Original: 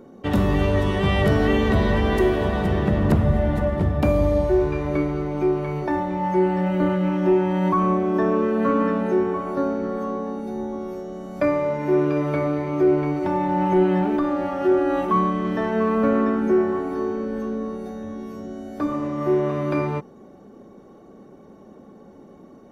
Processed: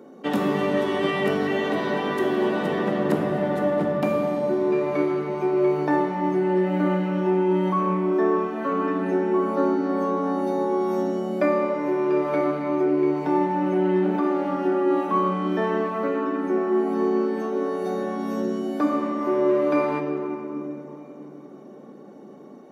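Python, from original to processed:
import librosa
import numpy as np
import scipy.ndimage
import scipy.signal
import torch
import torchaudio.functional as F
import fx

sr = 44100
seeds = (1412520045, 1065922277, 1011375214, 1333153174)

y = scipy.signal.sosfilt(scipy.signal.butter(4, 200.0, 'highpass', fs=sr, output='sos'), x)
y = fx.rider(y, sr, range_db=10, speed_s=0.5)
y = fx.room_shoebox(y, sr, seeds[0], volume_m3=200.0, walls='hard', distance_m=0.38)
y = y * librosa.db_to_amplitude(-3.0)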